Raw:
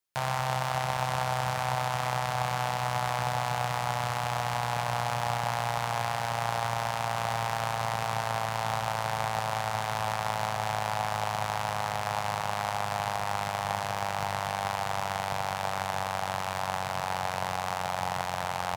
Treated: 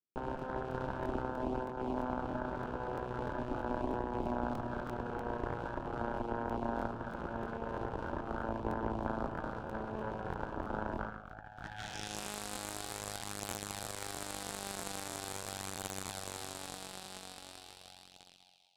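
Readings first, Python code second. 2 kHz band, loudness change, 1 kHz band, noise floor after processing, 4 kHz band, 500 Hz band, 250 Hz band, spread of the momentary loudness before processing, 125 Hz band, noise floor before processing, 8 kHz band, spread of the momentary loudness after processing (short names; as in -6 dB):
-12.0 dB, -9.0 dB, -12.5 dB, -57 dBFS, -11.5 dB, -5.0 dB, +3.5 dB, 2 LU, -10.5 dB, -33 dBFS, -5.0 dB, 8 LU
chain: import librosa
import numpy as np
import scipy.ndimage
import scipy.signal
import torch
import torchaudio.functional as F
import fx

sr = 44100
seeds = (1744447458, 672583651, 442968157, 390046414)

y = fx.fade_out_tail(x, sr, length_s=2.69)
y = scipy.signal.sosfilt(scipy.signal.cheby1(3, 1.0, [820.0, 2500.0], 'bandstop', fs=sr, output='sos'), y)
y = fx.filter_sweep_bandpass(y, sr, from_hz=290.0, to_hz=4000.0, start_s=10.89, end_s=12.21, q=2.4)
y = fx.echo_feedback(y, sr, ms=197, feedback_pct=31, wet_db=-4)
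y = fx.over_compress(y, sr, threshold_db=-44.0, ratio=-1.0)
y = fx.low_shelf(y, sr, hz=300.0, db=10.5)
y = fx.cheby_harmonics(y, sr, harmonics=(3, 4), levels_db=(-7, -9), full_scale_db=-24.0)
y = fx.buffer_crackle(y, sr, first_s=0.37, period_s=0.32, block=1024, kind='repeat')
y = F.gain(torch.from_numpy(y), 6.0).numpy()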